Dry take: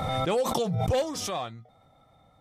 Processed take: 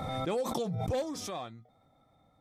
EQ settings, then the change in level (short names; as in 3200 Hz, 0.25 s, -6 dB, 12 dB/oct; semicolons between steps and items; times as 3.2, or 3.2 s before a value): bell 280 Hz +5.5 dB 1 oct; notch 2900 Hz, Q 11; -7.5 dB